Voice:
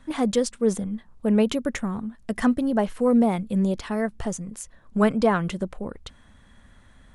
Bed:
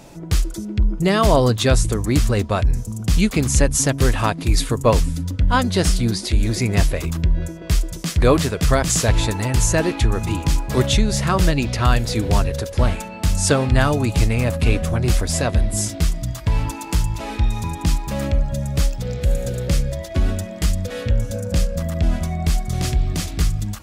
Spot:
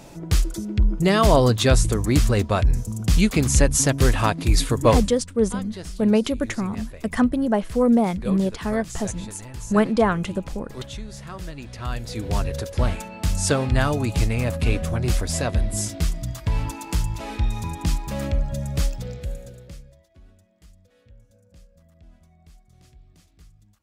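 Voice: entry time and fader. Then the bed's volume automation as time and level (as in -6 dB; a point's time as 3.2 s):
4.75 s, +1.5 dB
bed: 4.96 s -1 dB
5.17 s -18 dB
11.52 s -18 dB
12.53 s -4 dB
18.95 s -4 dB
20.17 s -32 dB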